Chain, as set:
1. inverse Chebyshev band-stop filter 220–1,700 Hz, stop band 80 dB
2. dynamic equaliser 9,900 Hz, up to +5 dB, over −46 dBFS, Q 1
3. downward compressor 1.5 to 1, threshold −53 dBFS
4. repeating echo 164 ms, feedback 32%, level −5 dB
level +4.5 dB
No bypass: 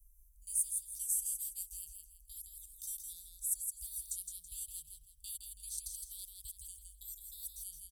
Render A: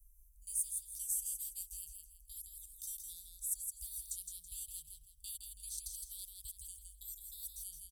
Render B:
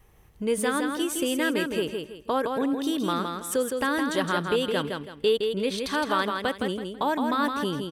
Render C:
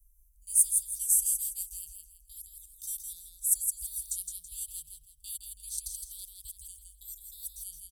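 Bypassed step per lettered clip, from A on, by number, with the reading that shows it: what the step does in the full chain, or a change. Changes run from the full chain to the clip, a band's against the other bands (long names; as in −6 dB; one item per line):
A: 2, change in momentary loudness spread −2 LU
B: 1, change in crest factor −10.5 dB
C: 3, average gain reduction 4.5 dB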